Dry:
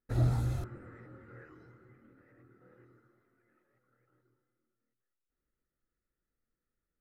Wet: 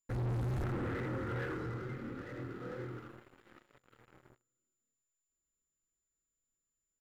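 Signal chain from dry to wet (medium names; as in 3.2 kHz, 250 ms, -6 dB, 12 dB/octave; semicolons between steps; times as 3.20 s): reverse; compression 6:1, threshold -41 dBFS, peak gain reduction 17 dB; reverse; delay 82 ms -8.5 dB; vibrato 2.2 Hz 41 cents; waveshaping leveller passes 5; whistle 7.1 kHz -79 dBFS; treble shelf 4 kHz -9 dB; band-stop 650 Hz, Q 12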